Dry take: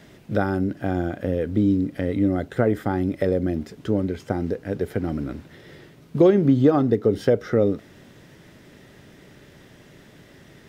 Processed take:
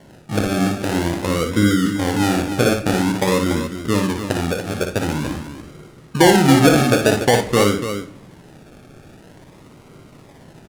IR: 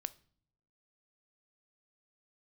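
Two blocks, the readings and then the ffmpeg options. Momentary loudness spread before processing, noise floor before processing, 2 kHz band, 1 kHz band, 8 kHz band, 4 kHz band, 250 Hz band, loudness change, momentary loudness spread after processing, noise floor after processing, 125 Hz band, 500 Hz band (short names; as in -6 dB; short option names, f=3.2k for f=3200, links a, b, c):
11 LU, -50 dBFS, +13.0 dB, +11.0 dB, n/a, +20.5 dB, +4.0 dB, +5.0 dB, 13 LU, -46 dBFS, +4.5 dB, +3.0 dB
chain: -filter_complex "[0:a]acrusher=samples=35:mix=1:aa=0.000001:lfo=1:lforange=21:lforate=0.48,aecho=1:1:58.31|288.6:0.501|0.355[a];[1:a]atrim=start_sample=2205,asetrate=22932,aresample=44100[b];[a][b]afir=irnorm=-1:irlink=0,volume=1.5dB"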